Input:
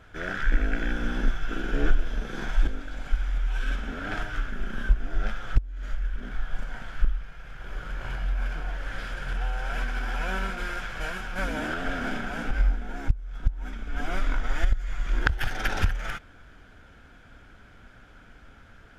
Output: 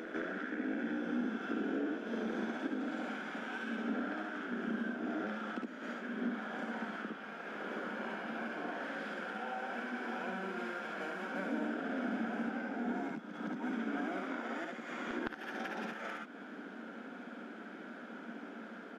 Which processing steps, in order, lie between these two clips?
Butterworth high-pass 200 Hz 72 dB per octave
ambience of single reflections 57 ms −6 dB, 70 ms −4.5 dB
downward compressor 10 to 1, threshold −41 dBFS, peak gain reduction 23.5 dB
spectral tilt −3.5 dB per octave
backwards echo 163 ms −7.5 dB
level +3 dB

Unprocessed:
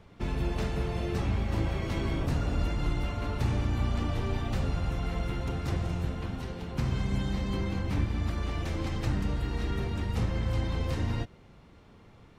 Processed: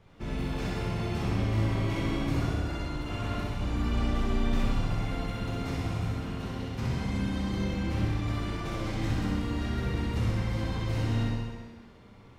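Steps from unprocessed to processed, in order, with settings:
0:02.50–0:03.61: compressor whose output falls as the input rises −32 dBFS, ratio −1
on a send: flutter between parallel walls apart 11.1 metres, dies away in 0.81 s
on the sum: dense smooth reverb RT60 1.5 s, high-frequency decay 0.95×, DRR −4 dB
level −5.5 dB

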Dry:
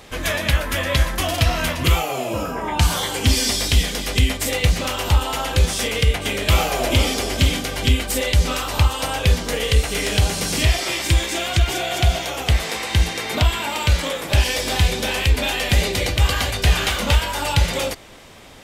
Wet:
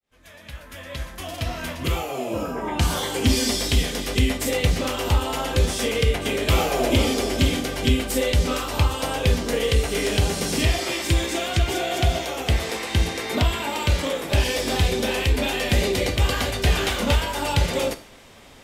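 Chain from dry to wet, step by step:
fade in at the beginning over 3.14 s
dynamic equaliser 340 Hz, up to +7 dB, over −35 dBFS, Q 0.73
reverb whose tail is shaped and stops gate 180 ms falling, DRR 10 dB
level −4.5 dB

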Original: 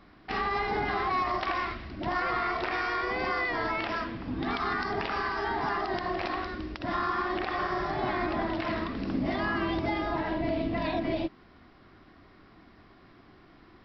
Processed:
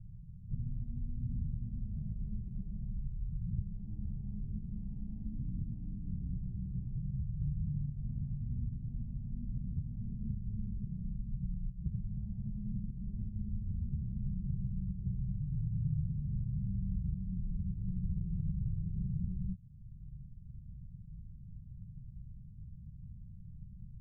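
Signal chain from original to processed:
inverse Chebyshev low-pass filter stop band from 810 Hz, stop band 60 dB
downward compressor 2.5 to 1, threshold −49 dBFS, peak gain reduction 13 dB
wrong playback speed 78 rpm record played at 45 rpm
level +12 dB

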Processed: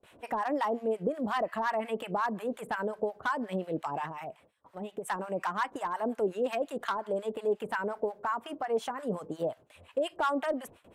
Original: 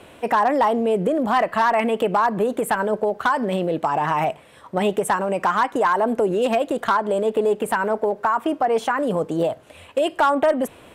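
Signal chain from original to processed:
noise gate with hold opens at −36 dBFS
0:04.05–0:05.08: downward compressor 10 to 1, threshold −25 dBFS, peak gain reduction 9.5 dB
two-band tremolo in antiphase 5.6 Hz, depth 100%, crossover 860 Hz
level −7 dB

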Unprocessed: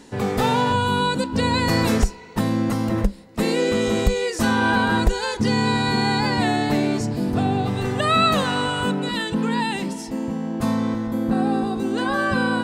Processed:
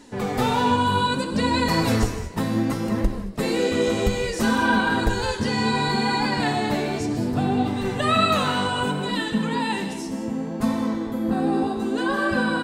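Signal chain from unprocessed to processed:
echo with shifted repeats 154 ms, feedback 32%, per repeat +67 Hz, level −17.5 dB
reverb whose tail is shaped and stops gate 250 ms flat, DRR 6.5 dB
flanger 0.65 Hz, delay 2.9 ms, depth 9.8 ms, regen +38%
level +1.5 dB

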